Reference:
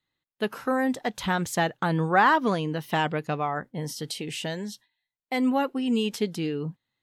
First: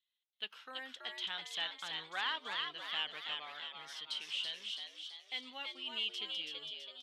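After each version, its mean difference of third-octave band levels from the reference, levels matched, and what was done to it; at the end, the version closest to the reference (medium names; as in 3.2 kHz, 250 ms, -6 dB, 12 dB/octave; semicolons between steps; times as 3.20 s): 11.5 dB: band-pass filter 3.2 kHz, Q 5; frequency-shifting echo 329 ms, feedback 54%, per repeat +100 Hz, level -4 dB; trim +1.5 dB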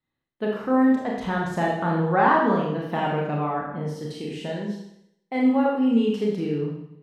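7.5 dB: low-pass 1 kHz 6 dB/octave; Schroeder reverb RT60 0.76 s, combs from 27 ms, DRR -2.5 dB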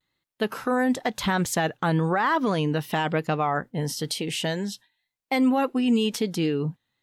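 2.5 dB: peak limiter -19 dBFS, peak gain reduction 11.5 dB; vibrato 1 Hz 58 cents; trim +4.5 dB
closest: third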